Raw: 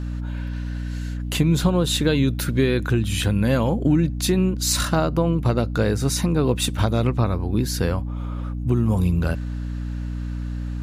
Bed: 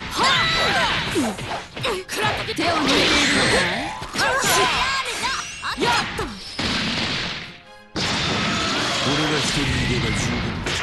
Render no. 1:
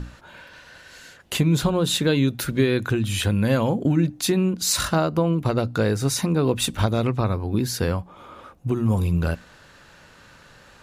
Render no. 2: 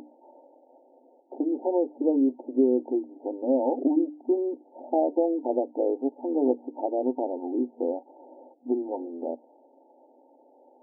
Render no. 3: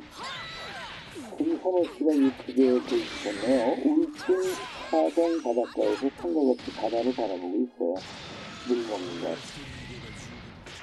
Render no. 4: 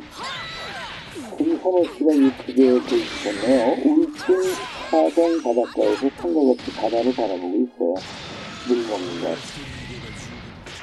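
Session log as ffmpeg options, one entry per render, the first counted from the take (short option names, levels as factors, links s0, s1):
-af "bandreject=f=60:t=h:w=6,bandreject=f=120:t=h:w=6,bandreject=f=180:t=h:w=6,bandreject=f=240:t=h:w=6,bandreject=f=300:t=h:w=6"
-af "bandreject=f=450:w=12,afftfilt=real='re*between(b*sr/4096,240,920)':imag='im*between(b*sr/4096,240,920)':win_size=4096:overlap=0.75"
-filter_complex "[1:a]volume=0.106[s0];[0:a][s0]amix=inputs=2:normalize=0"
-af "volume=2.11"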